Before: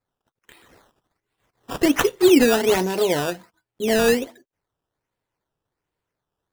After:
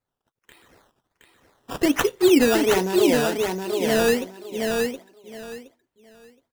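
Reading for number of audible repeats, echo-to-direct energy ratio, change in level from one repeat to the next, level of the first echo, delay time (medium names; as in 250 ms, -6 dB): 3, -4.0 dB, -13.0 dB, -4.0 dB, 719 ms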